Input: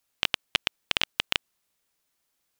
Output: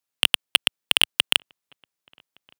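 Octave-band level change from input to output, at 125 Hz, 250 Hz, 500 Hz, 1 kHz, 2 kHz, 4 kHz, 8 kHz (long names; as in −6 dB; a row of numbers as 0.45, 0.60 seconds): +2.0, +3.0, +3.0, +2.5, +6.0, +9.0, +13.0 decibels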